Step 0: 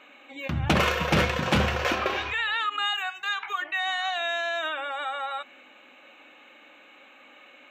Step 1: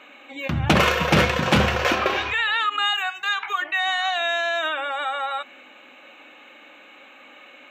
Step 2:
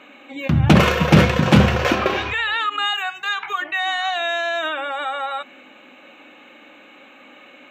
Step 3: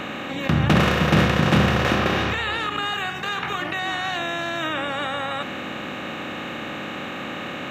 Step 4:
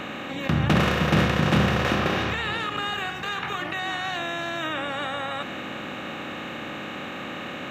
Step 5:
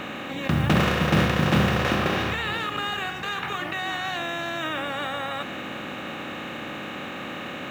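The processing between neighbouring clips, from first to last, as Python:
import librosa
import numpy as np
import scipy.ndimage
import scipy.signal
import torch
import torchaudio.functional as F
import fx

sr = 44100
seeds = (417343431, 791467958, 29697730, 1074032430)

y1 = scipy.signal.sosfilt(scipy.signal.butter(2, 70.0, 'highpass', fs=sr, output='sos'), x)
y1 = F.gain(torch.from_numpy(y1), 5.0).numpy()
y2 = fx.peak_eq(y1, sr, hz=150.0, db=9.0, octaves=2.7)
y3 = fx.bin_compress(y2, sr, power=0.4)
y3 = F.gain(torch.from_numpy(y3), -8.5).numpy()
y4 = y3 + 10.0 ** (-17.5 / 20.0) * np.pad(y3, (int(924 * sr / 1000.0), 0))[:len(y3)]
y4 = F.gain(torch.from_numpy(y4), -3.0).numpy()
y5 = fx.mod_noise(y4, sr, seeds[0], snr_db=29)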